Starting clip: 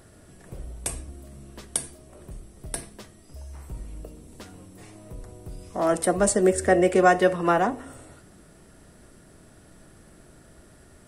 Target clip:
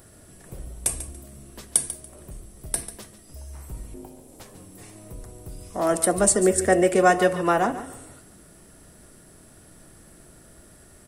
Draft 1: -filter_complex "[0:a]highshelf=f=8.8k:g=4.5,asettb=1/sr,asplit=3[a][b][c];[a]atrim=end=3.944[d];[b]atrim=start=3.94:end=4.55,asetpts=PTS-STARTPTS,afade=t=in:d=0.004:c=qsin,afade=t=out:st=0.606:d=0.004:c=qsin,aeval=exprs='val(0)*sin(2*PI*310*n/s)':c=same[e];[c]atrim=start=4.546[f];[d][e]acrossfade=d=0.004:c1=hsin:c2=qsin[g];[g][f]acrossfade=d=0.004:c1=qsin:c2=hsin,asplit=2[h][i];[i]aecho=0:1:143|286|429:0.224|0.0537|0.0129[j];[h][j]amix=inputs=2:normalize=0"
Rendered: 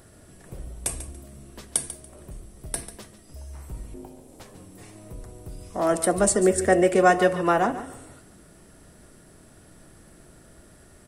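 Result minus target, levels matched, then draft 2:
8000 Hz band -3.5 dB
-filter_complex "[0:a]highshelf=f=8.8k:g=12.5,asettb=1/sr,asplit=3[a][b][c];[a]atrim=end=3.944[d];[b]atrim=start=3.94:end=4.55,asetpts=PTS-STARTPTS,afade=t=in:d=0.004:c=qsin,afade=t=out:st=0.606:d=0.004:c=qsin,aeval=exprs='val(0)*sin(2*PI*310*n/s)':c=same[e];[c]atrim=start=4.546[f];[d][e]acrossfade=d=0.004:c1=hsin:c2=qsin[g];[g][f]acrossfade=d=0.004:c1=qsin:c2=hsin,asplit=2[h][i];[i]aecho=0:1:143|286|429:0.224|0.0537|0.0129[j];[h][j]amix=inputs=2:normalize=0"

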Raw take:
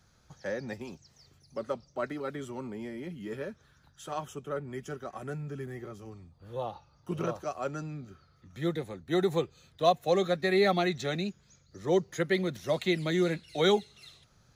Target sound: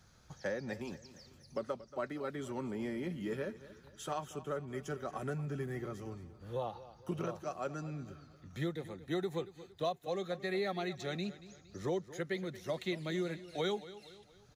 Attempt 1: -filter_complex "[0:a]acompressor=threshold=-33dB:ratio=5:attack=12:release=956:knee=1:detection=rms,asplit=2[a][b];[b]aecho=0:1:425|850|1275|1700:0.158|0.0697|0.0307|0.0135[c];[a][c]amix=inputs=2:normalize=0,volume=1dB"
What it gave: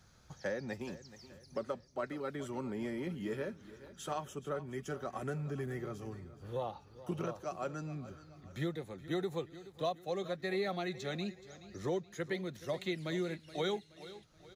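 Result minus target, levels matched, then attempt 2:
echo 0.194 s late
-filter_complex "[0:a]acompressor=threshold=-33dB:ratio=5:attack=12:release=956:knee=1:detection=rms,asplit=2[a][b];[b]aecho=0:1:231|462|693|924:0.158|0.0697|0.0307|0.0135[c];[a][c]amix=inputs=2:normalize=0,volume=1dB"

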